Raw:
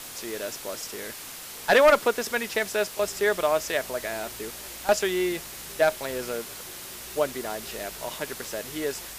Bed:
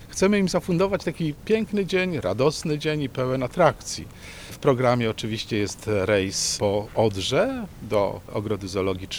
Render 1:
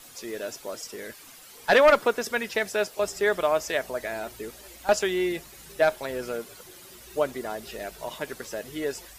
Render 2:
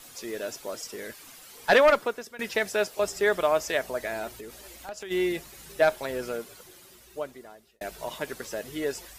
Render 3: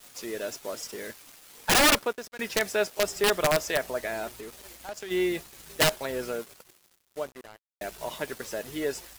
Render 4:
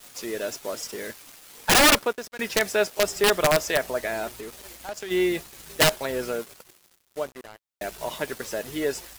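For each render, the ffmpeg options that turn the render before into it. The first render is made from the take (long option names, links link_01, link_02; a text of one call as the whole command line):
ffmpeg -i in.wav -af "afftdn=noise_reduction=11:noise_floor=-40" out.wav
ffmpeg -i in.wav -filter_complex "[0:a]asplit=3[link_01][link_02][link_03];[link_01]afade=type=out:start_time=4.32:duration=0.02[link_04];[link_02]acompressor=threshold=-38dB:ratio=4:attack=3.2:release=140:knee=1:detection=peak,afade=type=in:start_time=4.32:duration=0.02,afade=type=out:start_time=5.1:duration=0.02[link_05];[link_03]afade=type=in:start_time=5.1:duration=0.02[link_06];[link_04][link_05][link_06]amix=inputs=3:normalize=0,asplit=3[link_07][link_08][link_09];[link_07]atrim=end=2.39,asetpts=PTS-STARTPTS,afade=type=out:start_time=1.73:duration=0.66:silence=0.0944061[link_10];[link_08]atrim=start=2.39:end=7.81,asetpts=PTS-STARTPTS,afade=type=in:duration=0.004:curve=hsin:silence=0.0944061,afade=type=out:start_time=3.79:duration=1.63[link_11];[link_09]atrim=start=7.81,asetpts=PTS-STARTPTS,afade=type=in:duration=0.004:curve=hsin[link_12];[link_10][link_11][link_12]concat=n=3:v=0:a=1" out.wav
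ffmpeg -i in.wav -af "aeval=exprs='(mod(5.62*val(0)+1,2)-1)/5.62':channel_layout=same,acrusher=bits=6:mix=0:aa=0.5" out.wav
ffmpeg -i in.wav -af "volume=3.5dB" out.wav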